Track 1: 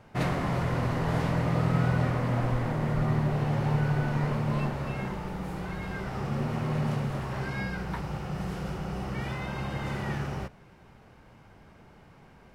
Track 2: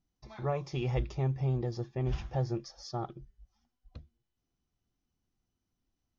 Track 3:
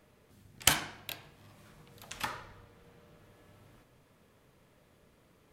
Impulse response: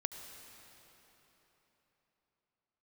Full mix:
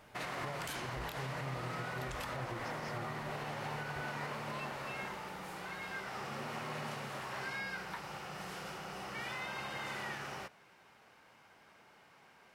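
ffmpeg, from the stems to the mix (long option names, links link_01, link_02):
-filter_complex "[0:a]highpass=frequency=1300:poles=1,volume=0.5dB[link_01];[1:a]volume=-8dB[link_02];[2:a]volume=1.5dB[link_03];[link_01][link_02][link_03]amix=inputs=3:normalize=0,alimiter=level_in=7dB:limit=-24dB:level=0:latency=1:release=116,volume=-7dB"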